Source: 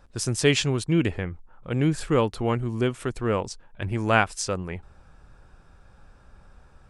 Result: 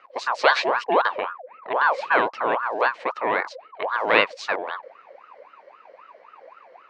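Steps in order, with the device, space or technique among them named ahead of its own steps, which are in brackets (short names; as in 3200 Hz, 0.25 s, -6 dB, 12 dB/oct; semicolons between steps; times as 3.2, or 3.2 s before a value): voice changer toy (ring modulator with a swept carrier 920 Hz, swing 45%, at 3.8 Hz; speaker cabinet 490–4000 Hz, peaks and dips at 510 Hz +4 dB, 780 Hz -4 dB, 1300 Hz -6 dB, 3400 Hz -7 dB); gain +8 dB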